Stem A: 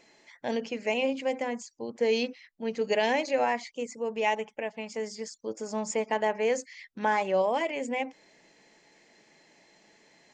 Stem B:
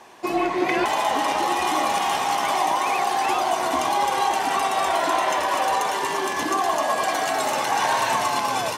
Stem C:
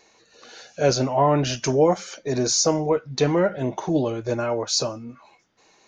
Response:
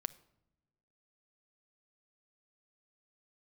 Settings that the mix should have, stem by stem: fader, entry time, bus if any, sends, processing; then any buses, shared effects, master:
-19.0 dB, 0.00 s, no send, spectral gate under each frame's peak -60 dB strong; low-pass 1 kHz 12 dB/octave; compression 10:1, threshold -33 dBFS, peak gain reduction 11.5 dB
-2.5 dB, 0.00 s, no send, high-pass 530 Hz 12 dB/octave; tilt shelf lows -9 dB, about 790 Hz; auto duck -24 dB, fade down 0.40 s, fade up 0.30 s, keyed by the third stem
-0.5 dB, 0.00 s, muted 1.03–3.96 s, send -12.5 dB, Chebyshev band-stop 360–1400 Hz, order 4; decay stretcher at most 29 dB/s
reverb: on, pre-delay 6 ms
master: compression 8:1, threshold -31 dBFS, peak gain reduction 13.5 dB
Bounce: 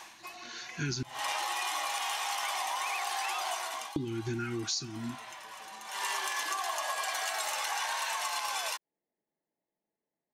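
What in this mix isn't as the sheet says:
stem A -19.0 dB -> -26.5 dB; stem C: missing decay stretcher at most 29 dB/s

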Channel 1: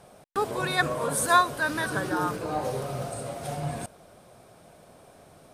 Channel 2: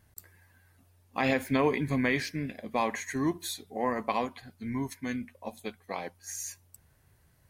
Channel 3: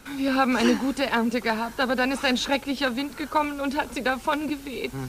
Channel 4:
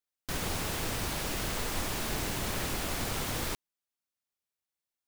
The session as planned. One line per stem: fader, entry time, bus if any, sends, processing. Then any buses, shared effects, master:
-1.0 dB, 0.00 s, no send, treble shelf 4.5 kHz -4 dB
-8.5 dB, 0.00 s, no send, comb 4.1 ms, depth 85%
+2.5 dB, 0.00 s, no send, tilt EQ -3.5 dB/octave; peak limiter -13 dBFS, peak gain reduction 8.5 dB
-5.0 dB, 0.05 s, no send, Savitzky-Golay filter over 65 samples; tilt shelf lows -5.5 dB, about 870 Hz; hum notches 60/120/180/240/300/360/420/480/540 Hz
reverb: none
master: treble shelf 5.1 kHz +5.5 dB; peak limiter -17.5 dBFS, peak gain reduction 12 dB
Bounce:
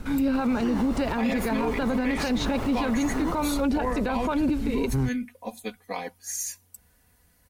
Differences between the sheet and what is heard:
stem 1: muted; stem 2 -8.5 dB -> +0.5 dB; stem 4 -5.0 dB -> +6.0 dB

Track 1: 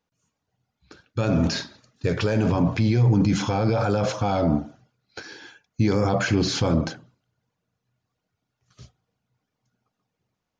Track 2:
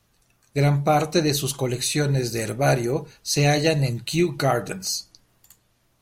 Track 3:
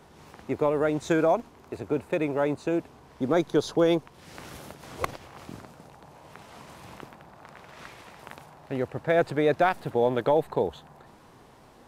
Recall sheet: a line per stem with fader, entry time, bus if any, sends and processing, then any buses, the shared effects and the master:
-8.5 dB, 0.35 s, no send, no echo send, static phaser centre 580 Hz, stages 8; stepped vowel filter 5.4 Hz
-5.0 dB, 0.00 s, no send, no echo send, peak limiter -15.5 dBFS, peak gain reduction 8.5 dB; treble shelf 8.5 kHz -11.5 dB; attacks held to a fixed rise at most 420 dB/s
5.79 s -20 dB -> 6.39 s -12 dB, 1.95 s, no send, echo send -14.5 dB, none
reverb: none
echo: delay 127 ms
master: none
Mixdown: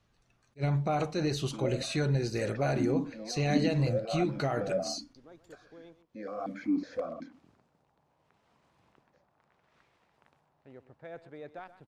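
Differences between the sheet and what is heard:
stem 1 -8.5 dB -> +0.5 dB; stem 3 -20.0 dB -> -30.5 dB; master: extra distance through air 53 m

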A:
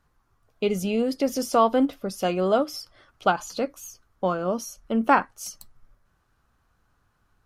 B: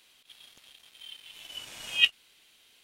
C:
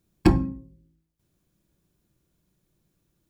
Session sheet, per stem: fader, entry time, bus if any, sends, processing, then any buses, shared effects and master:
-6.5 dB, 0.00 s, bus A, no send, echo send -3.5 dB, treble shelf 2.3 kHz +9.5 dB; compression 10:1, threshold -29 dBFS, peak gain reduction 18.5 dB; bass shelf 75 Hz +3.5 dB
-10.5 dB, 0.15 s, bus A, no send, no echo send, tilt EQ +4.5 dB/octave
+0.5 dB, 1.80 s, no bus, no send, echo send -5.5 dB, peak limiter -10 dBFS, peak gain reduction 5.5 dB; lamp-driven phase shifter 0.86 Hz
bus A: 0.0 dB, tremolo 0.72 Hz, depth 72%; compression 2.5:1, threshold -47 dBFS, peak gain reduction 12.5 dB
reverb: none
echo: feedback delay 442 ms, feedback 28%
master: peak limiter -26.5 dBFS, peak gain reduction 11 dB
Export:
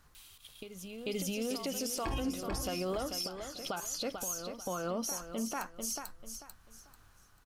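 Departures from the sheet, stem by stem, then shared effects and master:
stem A -6.5 dB -> +2.0 dB; stem B -10.5 dB -> -2.5 dB

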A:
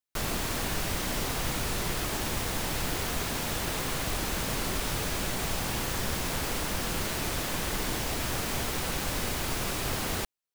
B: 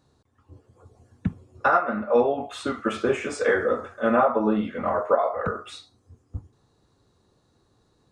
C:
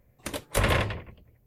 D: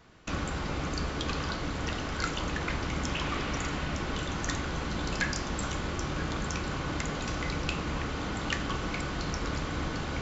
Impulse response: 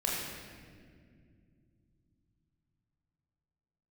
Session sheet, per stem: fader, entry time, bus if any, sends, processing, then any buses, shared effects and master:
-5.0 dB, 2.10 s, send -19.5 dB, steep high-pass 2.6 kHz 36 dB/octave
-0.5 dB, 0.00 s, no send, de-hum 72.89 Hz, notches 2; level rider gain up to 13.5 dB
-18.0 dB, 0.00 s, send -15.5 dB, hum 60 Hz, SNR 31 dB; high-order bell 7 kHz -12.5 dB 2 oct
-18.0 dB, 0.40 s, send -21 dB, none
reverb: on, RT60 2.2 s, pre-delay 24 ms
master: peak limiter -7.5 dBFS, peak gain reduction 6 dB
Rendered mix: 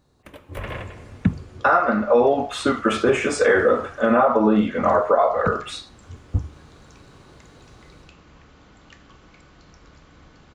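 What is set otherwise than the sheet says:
stem A: muted; stem C -18.0 dB -> -9.5 dB

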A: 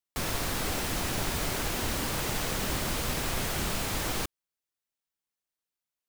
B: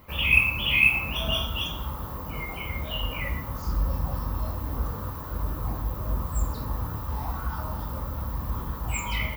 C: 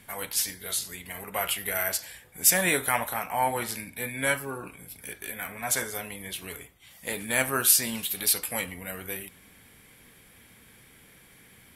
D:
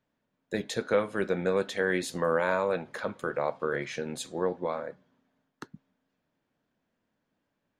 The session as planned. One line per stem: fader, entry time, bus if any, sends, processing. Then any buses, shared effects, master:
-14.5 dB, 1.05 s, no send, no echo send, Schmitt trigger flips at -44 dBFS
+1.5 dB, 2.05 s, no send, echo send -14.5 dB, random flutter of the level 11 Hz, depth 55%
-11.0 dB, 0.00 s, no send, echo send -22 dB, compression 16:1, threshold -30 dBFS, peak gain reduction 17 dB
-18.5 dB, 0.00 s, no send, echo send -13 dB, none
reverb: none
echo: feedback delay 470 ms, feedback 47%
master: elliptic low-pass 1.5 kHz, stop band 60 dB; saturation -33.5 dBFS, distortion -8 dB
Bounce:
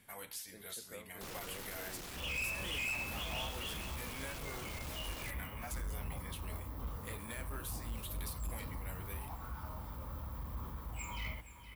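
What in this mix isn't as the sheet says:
stem B +1.5 dB -> -9.5 dB; stem D -18.5 dB -> -25.5 dB; master: missing elliptic low-pass 1.5 kHz, stop band 60 dB

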